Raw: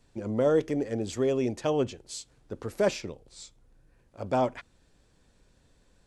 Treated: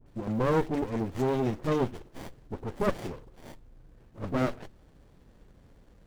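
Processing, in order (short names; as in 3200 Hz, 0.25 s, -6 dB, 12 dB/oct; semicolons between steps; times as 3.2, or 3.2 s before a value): G.711 law mismatch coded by mu; dispersion highs, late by 64 ms, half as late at 890 Hz; running maximum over 33 samples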